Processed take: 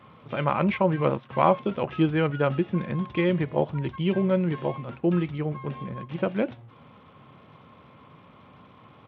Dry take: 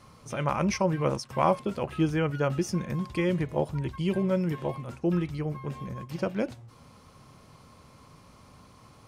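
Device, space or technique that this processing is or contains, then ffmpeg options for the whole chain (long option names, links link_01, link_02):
Bluetooth headset: -af "highpass=120,aresample=8000,aresample=44100,volume=3.5dB" -ar 32000 -c:a sbc -b:a 64k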